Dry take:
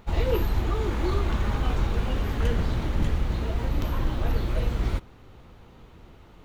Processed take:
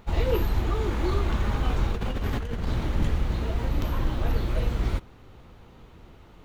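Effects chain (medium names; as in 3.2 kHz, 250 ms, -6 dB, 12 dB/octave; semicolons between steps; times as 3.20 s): 1.91–2.67 s: compressor with a negative ratio -28 dBFS, ratio -1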